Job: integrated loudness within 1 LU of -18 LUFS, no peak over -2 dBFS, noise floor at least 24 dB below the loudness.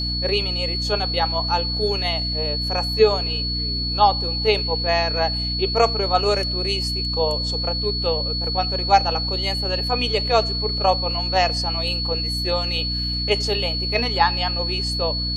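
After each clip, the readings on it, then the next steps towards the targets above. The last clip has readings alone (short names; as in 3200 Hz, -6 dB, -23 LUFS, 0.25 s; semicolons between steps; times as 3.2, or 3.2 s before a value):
hum 60 Hz; harmonics up to 300 Hz; hum level -25 dBFS; steady tone 4400 Hz; tone level -24 dBFS; loudness -20.5 LUFS; peak -2.5 dBFS; loudness target -18.0 LUFS
-> de-hum 60 Hz, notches 5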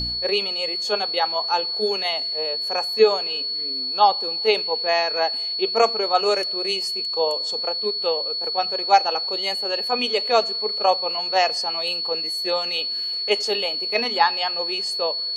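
hum none; steady tone 4400 Hz; tone level -24 dBFS
-> notch 4400 Hz, Q 30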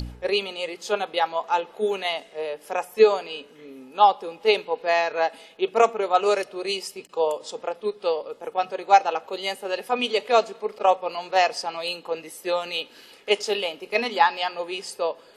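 steady tone none; loudness -24.5 LUFS; peak -3.5 dBFS; loudness target -18.0 LUFS
-> gain +6.5 dB; limiter -2 dBFS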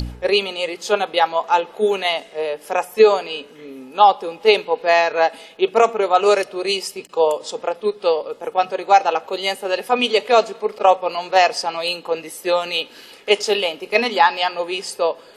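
loudness -18.5 LUFS; peak -2.0 dBFS; noise floor -45 dBFS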